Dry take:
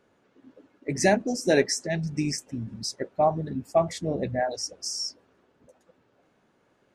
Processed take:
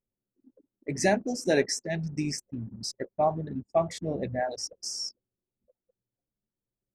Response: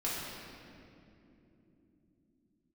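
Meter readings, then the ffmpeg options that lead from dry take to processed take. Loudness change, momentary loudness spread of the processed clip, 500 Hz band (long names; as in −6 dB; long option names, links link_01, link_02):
−3.0 dB, 10 LU, −3.0 dB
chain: -af "anlmdn=0.158,volume=-3dB"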